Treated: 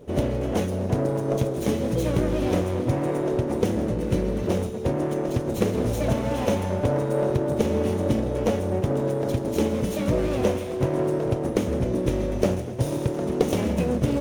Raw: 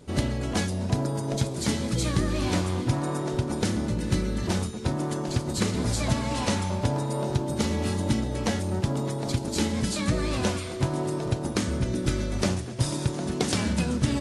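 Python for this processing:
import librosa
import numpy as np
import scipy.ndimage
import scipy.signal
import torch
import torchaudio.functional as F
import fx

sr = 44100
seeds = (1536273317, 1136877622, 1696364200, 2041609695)

y = fx.lower_of_two(x, sr, delay_ms=0.31)
y = fx.graphic_eq(y, sr, hz=(500, 4000, 8000), db=(11, -6, -6))
y = y + 10.0 ** (-16.0 / 20.0) * np.pad(y, (int(161 * sr / 1000.0), 0))[:len(y)]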